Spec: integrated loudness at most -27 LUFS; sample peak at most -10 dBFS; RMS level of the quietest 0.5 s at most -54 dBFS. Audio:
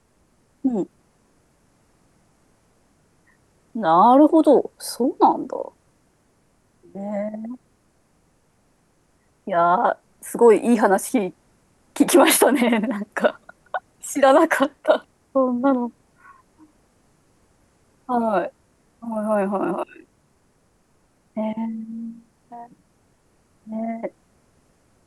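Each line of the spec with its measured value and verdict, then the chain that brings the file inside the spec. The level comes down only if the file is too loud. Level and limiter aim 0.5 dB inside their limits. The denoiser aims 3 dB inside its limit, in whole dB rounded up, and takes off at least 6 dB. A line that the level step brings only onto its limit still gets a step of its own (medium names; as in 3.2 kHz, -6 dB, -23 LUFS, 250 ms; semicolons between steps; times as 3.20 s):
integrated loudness -20.0 LUFS: fail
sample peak -4.5 dBFS: fail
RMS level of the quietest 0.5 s -62 dBFS: pass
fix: trim -7.5 dB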